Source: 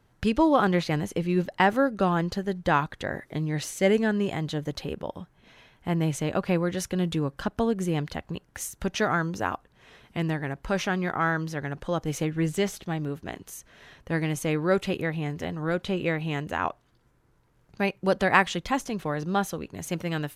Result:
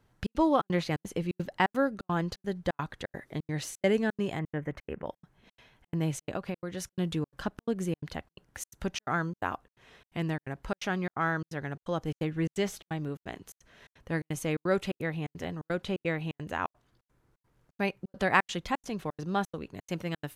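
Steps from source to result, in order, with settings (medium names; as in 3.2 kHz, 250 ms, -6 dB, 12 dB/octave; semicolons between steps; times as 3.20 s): 4.39–5.06 s: resonant high shelf 2.9 kHz -12 dB, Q 3; 6.35–6.91 s: compression 6:1, threshold -27 dBFS, peak gain reduction 8.5 dB; trance gate "xxx.xxx." 172 bpm -60 dB; trim -4 dB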